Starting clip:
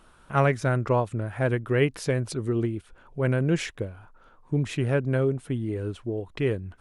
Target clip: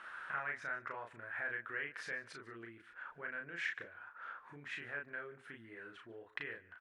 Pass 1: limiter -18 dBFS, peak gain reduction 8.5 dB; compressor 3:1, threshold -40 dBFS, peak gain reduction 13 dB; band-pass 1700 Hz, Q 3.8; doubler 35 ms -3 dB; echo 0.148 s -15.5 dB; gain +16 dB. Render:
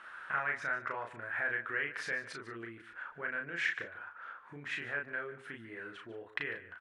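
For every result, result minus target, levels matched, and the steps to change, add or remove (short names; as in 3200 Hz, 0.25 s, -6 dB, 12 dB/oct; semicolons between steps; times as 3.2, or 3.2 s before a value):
compressor: peak gain reduction -6 dB; echo-to-direct +6.5 dB
change: compressor 3:1, threshold -49 dBFS, peak gain reduction 19 dB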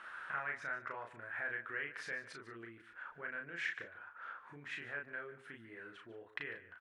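echo-to-direct +6.5 dB
change: echo 0.148 s -22 dB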